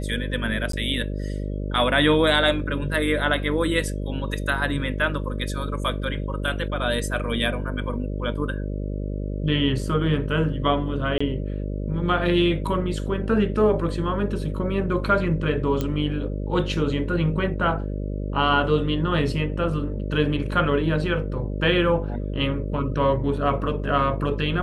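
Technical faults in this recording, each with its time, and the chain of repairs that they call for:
mains buzz 50 Hz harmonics 12 −28 dBFS
0:00.72–0:00.73: drop-out 13 ms
0:11.18–0:11.21: drop-out 25 ms
0:15.81: click −12 dBFS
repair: click removal
hum removal 50 Hz, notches 12
repair the gap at 0:00.72, 13 ms
repair the gap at 0:11.18, 25 ms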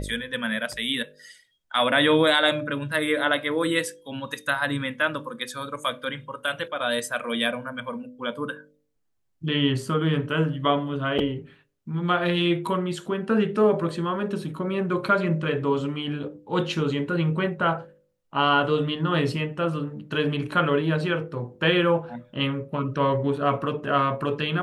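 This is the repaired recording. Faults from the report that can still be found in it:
0:15.81: click

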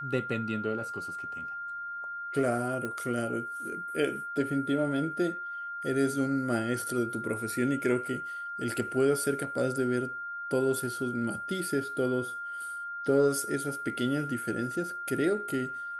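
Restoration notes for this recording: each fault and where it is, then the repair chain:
whistle 1,400 Hz −35 dBFS
0:02.85: click −22 dBFS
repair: click removal
notch filter 1,400 Hz, Q 30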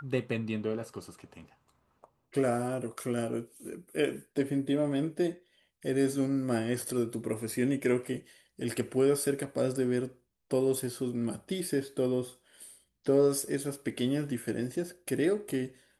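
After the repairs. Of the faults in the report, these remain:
none of them is left

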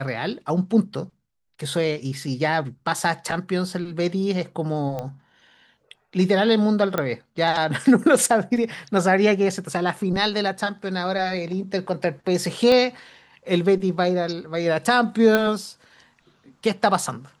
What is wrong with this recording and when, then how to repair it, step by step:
0:04.99: click −17 dBFS
0:06.98: click −9 dBFS
0:12.72: click −9 dBFS
0:15.35: click −6 dBFS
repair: click removal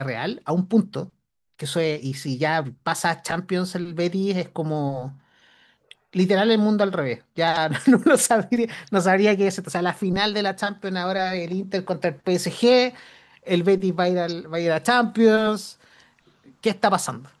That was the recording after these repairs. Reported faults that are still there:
0:12.72: click

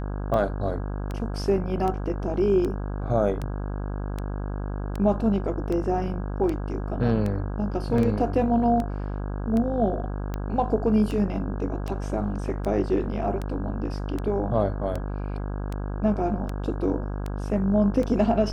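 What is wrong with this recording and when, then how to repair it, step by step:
mains buzz 50 Hz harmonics 33 −30 dBFS
scratch tick 78 rpm −18 dBFS
0:07.98: drop-out 2.9 ms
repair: click removal
hum removal 50 Hz, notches 33
repair the gap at 0:07.98, 2.9 ms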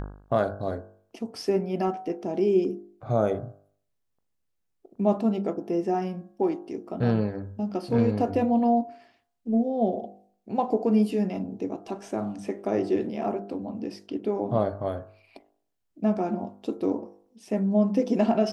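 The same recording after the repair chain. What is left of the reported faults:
none of them is left

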